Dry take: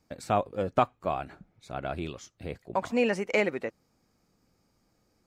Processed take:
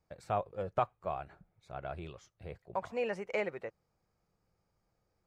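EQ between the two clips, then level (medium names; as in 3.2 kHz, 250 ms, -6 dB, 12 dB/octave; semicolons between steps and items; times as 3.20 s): peaking EQ 260 Hz -14.5 dB 0.65 oct; treble shelf 2.5 kHz -10.5 dB; -5.0 dB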